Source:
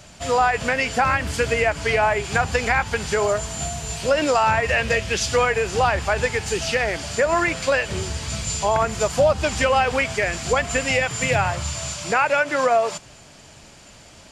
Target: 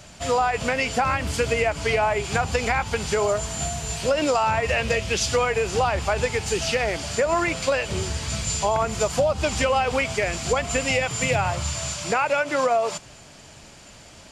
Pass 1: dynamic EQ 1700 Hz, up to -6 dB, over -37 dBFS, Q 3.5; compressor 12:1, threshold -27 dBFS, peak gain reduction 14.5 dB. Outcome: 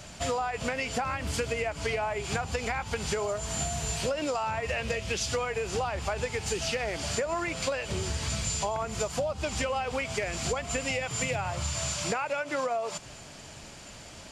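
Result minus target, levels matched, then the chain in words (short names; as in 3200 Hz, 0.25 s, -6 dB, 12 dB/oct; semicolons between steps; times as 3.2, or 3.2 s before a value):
compressor: peak gain reduction +9.5 dB
dynamic EQ 1700 Hz, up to -6 dB, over -37 dBFS, Q 3.5; compressor 12:1, threshold -16.5 dBFS, peak gain reduction 5 dB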